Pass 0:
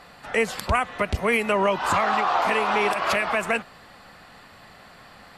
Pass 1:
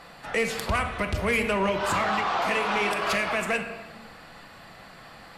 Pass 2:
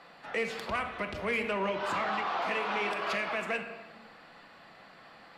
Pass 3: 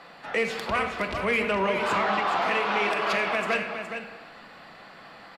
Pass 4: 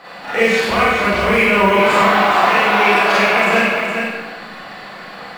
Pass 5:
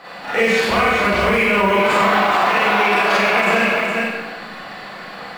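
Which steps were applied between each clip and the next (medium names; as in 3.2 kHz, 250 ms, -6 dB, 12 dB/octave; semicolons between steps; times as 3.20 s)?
simulated room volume 590 m³, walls mixed, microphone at 0.69 m; dynamic bell 840 Hz, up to -5 dB, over -32 dBFS, Q 0.9; saturation -16.5 dBFS, distortion -19 dB
three-band isolator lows -13 dB, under 170 Hz, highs -12 dB, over 5.2 kHz; trim -6 dB
delay 417 ms -8 dB; trim +6 dB
in parallel at -1.5 dB: peak limiter -22.5 dBFS, peak gain reduction 8.5 dB; on the sum: short-mantissa float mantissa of 4-bit; Schroeder reverb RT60 0.8 s, combs from 31 ms, DRR -8.5 dB
peak limiter -6.5 dBFS, peak gain reduction 5 dB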